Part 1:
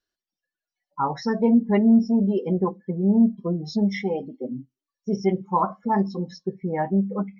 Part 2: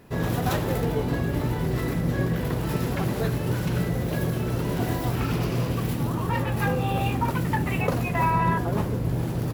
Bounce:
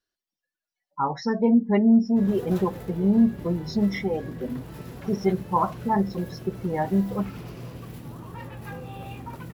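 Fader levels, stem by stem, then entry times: −1.0, −13.0 decibels; 0.00, 2.05 seconds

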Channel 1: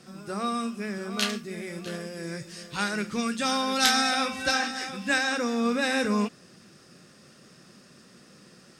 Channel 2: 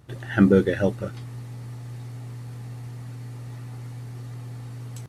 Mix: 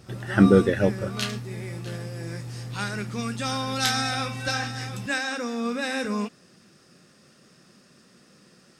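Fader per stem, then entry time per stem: −2.5, +0.5 decibels; 0.00, 0.00 seconds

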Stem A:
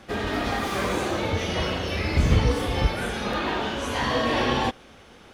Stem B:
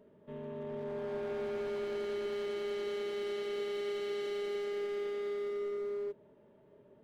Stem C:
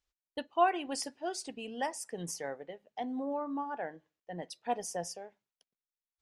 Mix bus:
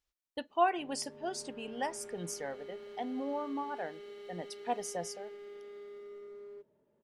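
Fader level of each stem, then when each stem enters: muted, −11.5 dB, −1.0 dB; muted, 0.50 s, 0.00 s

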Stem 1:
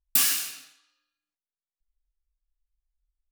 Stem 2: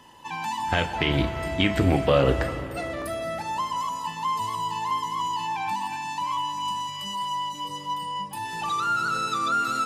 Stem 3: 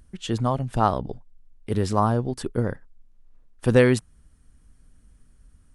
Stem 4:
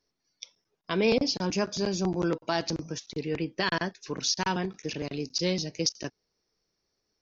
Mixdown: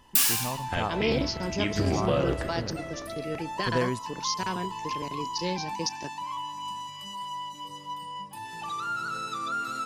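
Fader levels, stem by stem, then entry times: −0.5, −7.0, −11.0, −3.5 decibels; 0.00, 0.00, 0.00, 0.00 seconds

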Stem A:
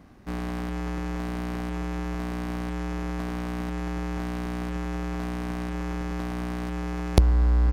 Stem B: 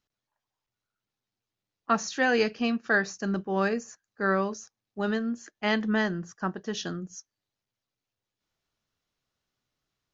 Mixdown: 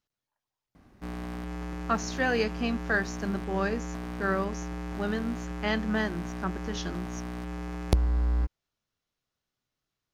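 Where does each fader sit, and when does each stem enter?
−5.5, −3.0 decibels; 0.75, 0.00 seconds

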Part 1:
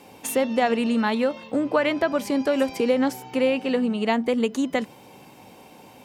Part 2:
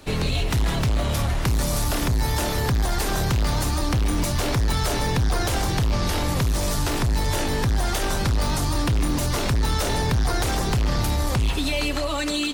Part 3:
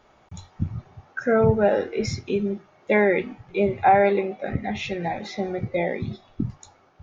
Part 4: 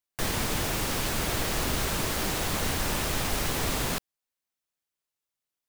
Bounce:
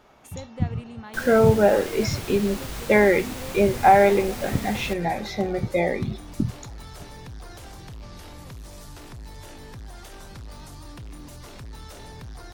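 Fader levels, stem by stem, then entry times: −18.5, −18.5, +2.0, −7.5 decibels; 0.00, 2.10, 0.00, 0.95 seconds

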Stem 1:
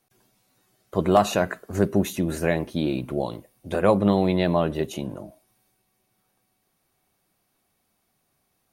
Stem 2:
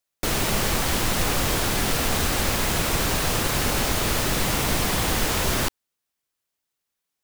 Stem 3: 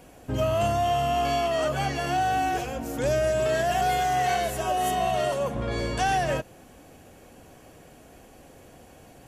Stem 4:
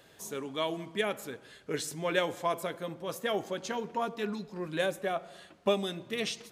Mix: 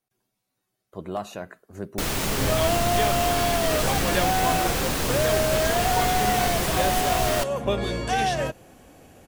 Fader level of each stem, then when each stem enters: −13.0, −3.0, 0.0, +1.5 decibels; 0.00, 1.75, 2.10, 2.00 seconds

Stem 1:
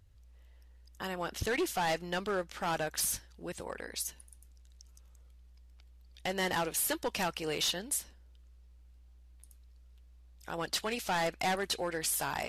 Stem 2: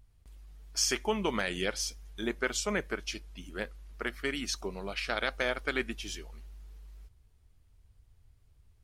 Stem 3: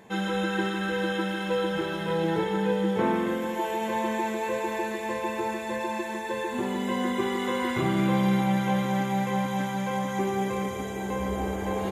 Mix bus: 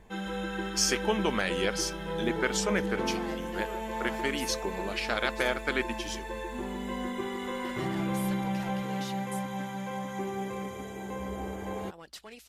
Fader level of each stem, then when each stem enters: −12.5, +2.0, −7.0 decibels; 1.40, 0.00, 0.00 seconds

